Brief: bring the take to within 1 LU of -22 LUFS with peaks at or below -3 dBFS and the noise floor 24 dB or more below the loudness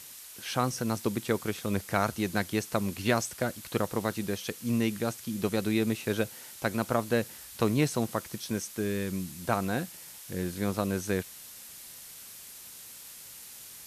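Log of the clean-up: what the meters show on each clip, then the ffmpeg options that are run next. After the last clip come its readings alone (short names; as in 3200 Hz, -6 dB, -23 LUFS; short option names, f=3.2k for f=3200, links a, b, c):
noise floor -47 dBFS; noise floor target -55 dBFS; loudness -31.0 LUFS; peak -10.5 dBFS; loudness target -22.0 LUFS
-> -af "afftdn=nr=8:nf=-47"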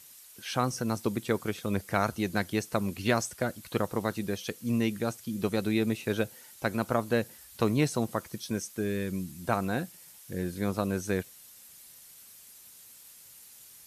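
noise floor -53 dBFS; noise floor target -55 dBFS
-> -af "afftdn=nr=6:nf=-53"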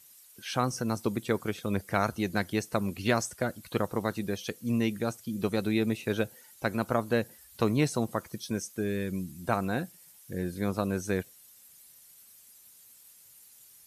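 noise floor -56 dBFS; loudness -31.0 LUFS; peak -10.5 dBFS; loudness target -22.0 LUFS
-> -af "volume=9dB,alimiter=limit=-3dB:level=0:latency=1"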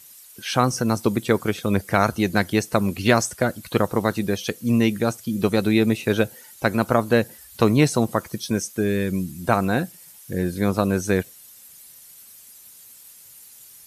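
loudness -22.0 LUFS; peak -3.0 dBFS; noise floor -47 dBFS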